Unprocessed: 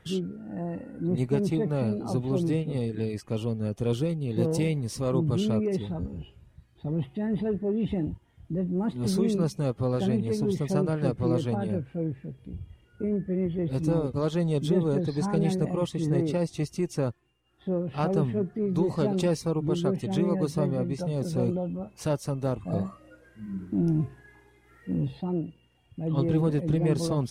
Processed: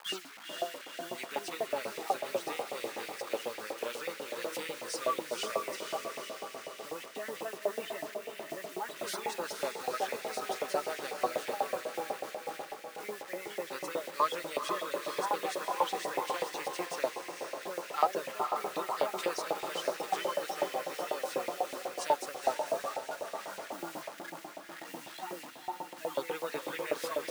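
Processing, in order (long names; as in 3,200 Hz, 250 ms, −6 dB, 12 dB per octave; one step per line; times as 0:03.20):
spectral magnitudes quantised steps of 30 dB
high-shelf EQ 3,700 Hz −7 dB
in parallel at +1 dB: downward compressor 5 to 1, threshold −35 dBFS, peak gain reduction 14 dB
on the sum: reverb reduction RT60 0.84 s
bit reduction 8 bits
on a send: feedback delay with all-pass diffusion 485 ms, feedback 62%, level −4.5 dB
on the sum: auto-filter high-pass saw up 8.1 Hz 710–2,300 Hz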